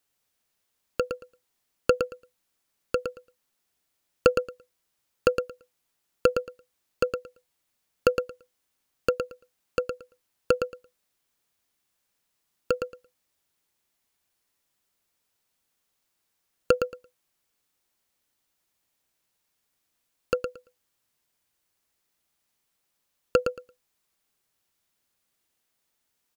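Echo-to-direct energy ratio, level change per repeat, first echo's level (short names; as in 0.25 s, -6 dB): -7.0 dB, -16.0 dB, -7.0 dB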